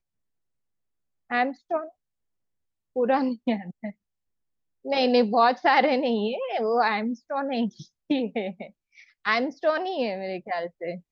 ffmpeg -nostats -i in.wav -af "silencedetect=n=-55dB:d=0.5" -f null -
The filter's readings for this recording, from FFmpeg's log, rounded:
silence_start: 0.00
silence_end: 1.30 | silence_duration: 1.30
silence_start: 1.91
silence_end: 2.96 | silence_duration: 1.04
silence_start: 3.93
silence_end: 4.84 | silence_duration: 0.92